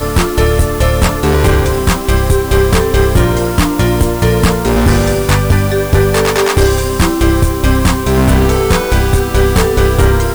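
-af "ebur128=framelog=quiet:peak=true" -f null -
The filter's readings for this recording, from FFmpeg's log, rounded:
Integrated loudness:
  I:         -11.9 LUFS
  Threshold: -21.9 LUFS
Loudness range:
  LRA:         0.4 LU
  Threshold: -31.9 LUFS
  LRA low:   -12.1 LUFS
  LRA high:  -11.7 LUFS
True peak:
  Peak:       -1.0 dBFS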